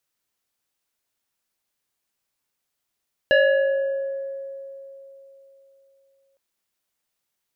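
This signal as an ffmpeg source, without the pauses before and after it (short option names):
-f lavfi -i "aevalsrc='0.251*pow(10,-3*t/3.53)*sin(2*PI*546*t+1.4*pow(10,-3*t/2.28)*sin(2*PI*2.09*546*t))':d=3.06:s=44100"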